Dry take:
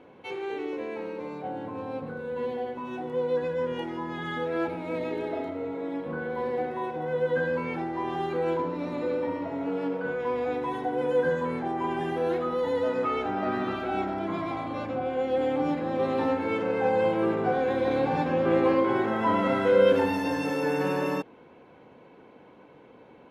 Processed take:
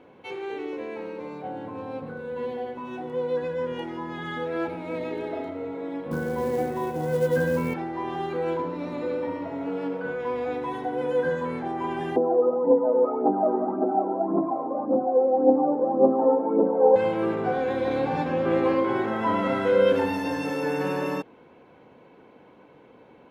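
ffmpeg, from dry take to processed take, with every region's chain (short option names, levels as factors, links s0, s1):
-filter_complex "[0:a]asettb=1/sr,asplit=3[s0][s1][s2];[s0]atrim=end=6.114[s3];[s1]atrim=start=6.11:end=7.74,asetpts=PTS-STARTPTS,afade=t=in:d=0.004:c=qsin,afade=t=out:st=1.626:d=0.004:c=qsin,lowshelf=f=300:g=11,acrusher=bits=6:mode=log:mix=0:aa=0.000001[s4];[s2]atrim=start=7.736[s5];[s3][s4]acrossfade=d=0.004:c1=hsin:c2=qsin[s6];[s6][s5]acrossfade=d=0.004:c1=qsin:c2=hsin,asettb=1/sr,asplit=3[s7][s8][s9];[s7]atrim=end=12.164[s10];[s8]atrim=start=12.16:end=16.96,asetpts=PTS-STARTPTS,afade=t=in:d=0.004:c=qsin,afade=t=out:st=4.796:d=0.004:c=qsin,acontrast=37,aphaser=in_gain=1:out_gain=1:delay=2.4:decay=0.59:speed=1.8:type=triangular,asuperpass=centerf=440:order=8:qfactor=0.61[s11];[s9]atrim=start=16.956[s12];[s10][s11]acrossfade=d=0.004:c1=hsin:c2=qsin[s13];[s13][s12]acrossfade=d=0.004:c1=qsin:c2=hsin"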